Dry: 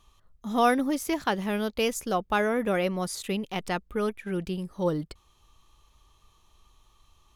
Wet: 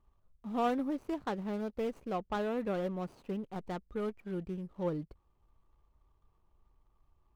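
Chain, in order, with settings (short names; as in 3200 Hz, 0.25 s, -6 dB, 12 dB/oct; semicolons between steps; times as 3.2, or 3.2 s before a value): median filter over 25 samples; high shelf 3100 Hz -7.5 dB; gain -7 dB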